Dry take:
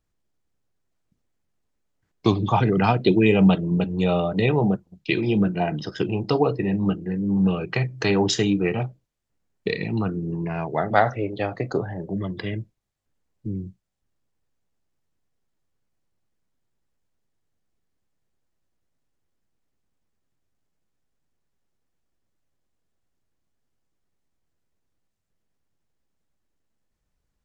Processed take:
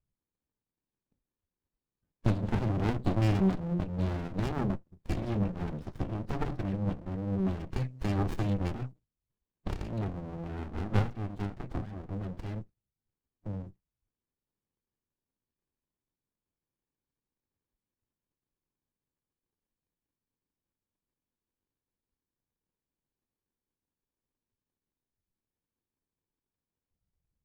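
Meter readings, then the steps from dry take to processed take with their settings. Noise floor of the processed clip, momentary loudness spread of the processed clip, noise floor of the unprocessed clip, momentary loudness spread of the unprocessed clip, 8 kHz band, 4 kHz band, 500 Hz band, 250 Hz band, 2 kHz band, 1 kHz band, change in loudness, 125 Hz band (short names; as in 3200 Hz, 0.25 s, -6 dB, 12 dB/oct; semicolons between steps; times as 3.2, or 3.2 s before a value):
under -85 dBFS, 12 LU, -76 dBFS, 11 LU, n/a, -17.0 dB, -15.0 dB, -11.0 dB, -16.0 dB, -14.0 dB, -10.5 dB, -6.5 dB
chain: bin magnitudes rounded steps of 30 dB; running maximum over 65 samples; gain -7 dB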